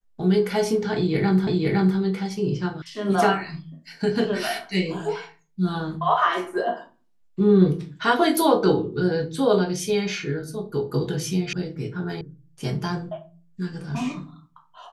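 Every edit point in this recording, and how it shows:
0:01.47: the same again, the last 0.51 s
0:02.82: cut off before it has died away
0:11.53: cut off before it has died away
0:12.21: cut off before it has died away

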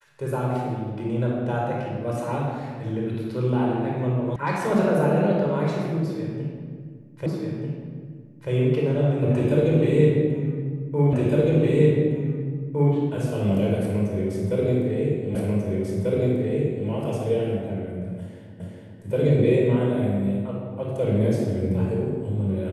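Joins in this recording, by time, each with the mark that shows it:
0:04.36: cut off before it has died away
0:07.26: the same again, the last 1.24 s
0:11.13: the same again, the last 1.81 s
0:15.35: the same again, the last 1.54 s
0:18.60: the same again, the last 0.41 s

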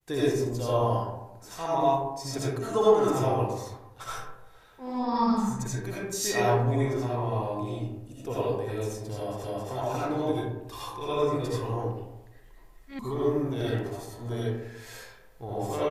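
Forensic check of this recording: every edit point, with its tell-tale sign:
0:09.44: the same again, the last 0.27 s
0:12.99: cut off before it has died away

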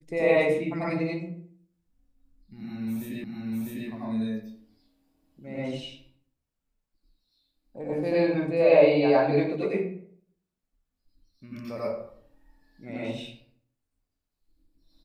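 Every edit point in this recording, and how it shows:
0:03.24: the same again, the last 0.65 s

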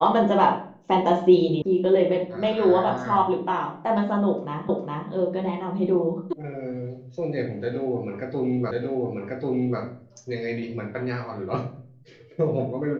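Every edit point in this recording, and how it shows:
0:01.62: cut off before it has died away
0:04.69: the same again, the last 0.41 s
0:06.33: cut off before it has died away
0:08.71: the same again, the last 1.09 s

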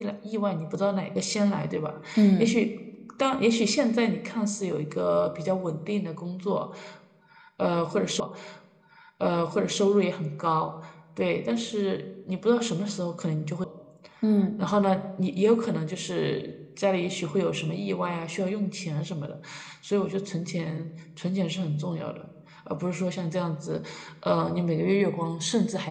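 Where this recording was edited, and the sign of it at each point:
0:08.20: the same again, the last 1.61 s
0:13.64: cut off before it has died away

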